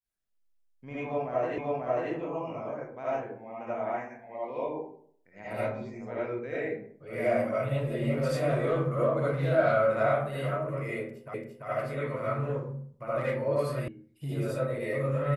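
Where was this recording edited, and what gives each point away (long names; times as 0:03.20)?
0:01.58: the same again, the last 0.54 s
0:11.34: the same again, the last 0.34 s
0:13.88: cut off before it has died away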